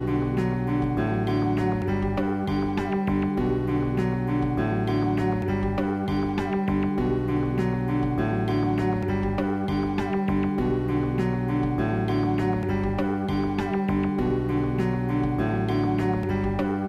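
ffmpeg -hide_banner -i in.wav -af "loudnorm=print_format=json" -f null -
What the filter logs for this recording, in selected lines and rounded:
"input_i" : "-25.3",
"input_tp" : "-13.1",
"input_lra" : "0.2",
"input_thresh" : "-35.3",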